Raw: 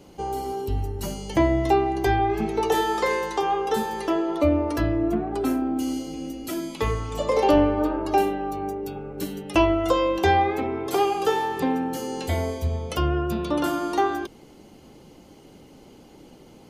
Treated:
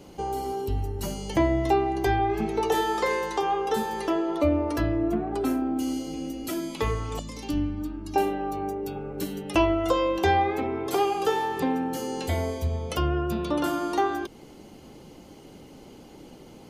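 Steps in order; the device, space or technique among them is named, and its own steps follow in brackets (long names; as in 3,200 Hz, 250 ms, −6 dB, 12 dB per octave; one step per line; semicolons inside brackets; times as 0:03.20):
parallel compression (in parallel at −2 dB: downward compressor, threshold −34 dBFS, peak gain reduction 18.5 dB)
0:07.19–0:08.16: on the sum: drawn EQ curve 270 Hz 0 dB, 470 Hz −26 dB, 6,400 Hz +1 dB
level −3.5 dB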